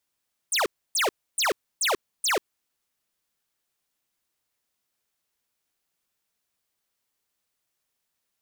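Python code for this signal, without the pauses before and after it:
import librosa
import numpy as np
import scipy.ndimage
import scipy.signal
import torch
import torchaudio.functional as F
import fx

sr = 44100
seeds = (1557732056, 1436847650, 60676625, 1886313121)

y = fx.laser_zaps(sr, level_db=-23.0, start_hz=10000.0, end_hz=330.0, length_s=0.14, wave='square', shots=5, gap_s=0.29)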